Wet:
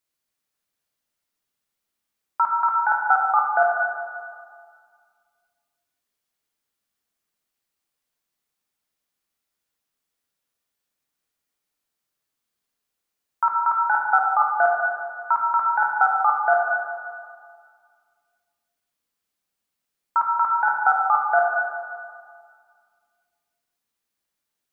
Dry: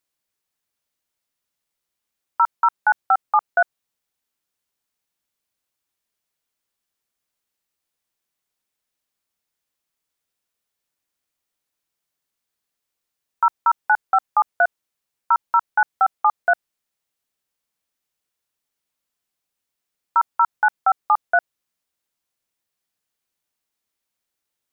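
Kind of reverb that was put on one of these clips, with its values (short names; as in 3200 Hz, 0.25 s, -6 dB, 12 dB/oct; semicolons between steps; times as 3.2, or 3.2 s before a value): plate-style reverb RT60 2 s, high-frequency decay 0.6×, DRR -1 dB; gain -3 dB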